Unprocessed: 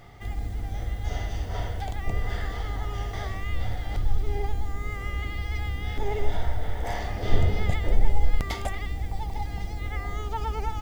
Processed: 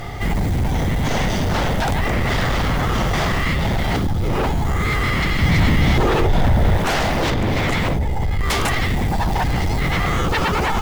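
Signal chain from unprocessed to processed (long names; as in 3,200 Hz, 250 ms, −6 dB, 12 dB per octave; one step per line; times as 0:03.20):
downward compressor 10 to 1, threshold −21 dBFS, peak gain reduction 11.5 dB
sine wavefolder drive 17 dB, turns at −14 dBFS
0:05.42–0:06.77: low-shelf EQ 340 Hz +6 dB
level −1.5 dB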